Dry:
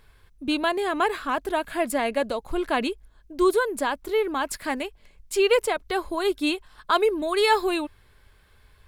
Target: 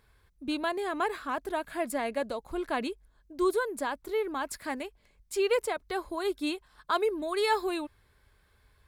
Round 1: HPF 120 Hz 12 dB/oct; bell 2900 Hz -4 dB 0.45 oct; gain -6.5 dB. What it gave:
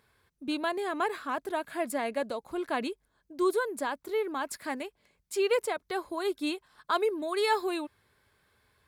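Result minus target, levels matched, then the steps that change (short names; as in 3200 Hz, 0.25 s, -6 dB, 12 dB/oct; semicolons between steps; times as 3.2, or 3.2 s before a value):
125 Hz band -4.0 dB
change: HPF 31 Hz 12 dB/oct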